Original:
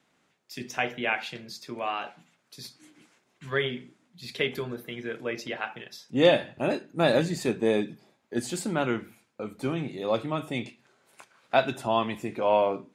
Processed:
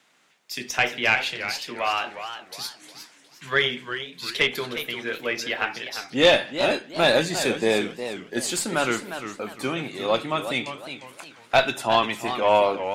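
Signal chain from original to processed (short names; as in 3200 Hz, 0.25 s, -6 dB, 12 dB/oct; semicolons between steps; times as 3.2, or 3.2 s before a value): tilt +3.5 dB/oct; added harmonics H 2 -7 dB, 5 -17 dB, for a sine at -4.5 dBFS; high shelf 5600 Hz -10.5 dB; warbling echo 0.356 s, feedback 34%, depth 171 cents, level -10 dB; gain +2 dB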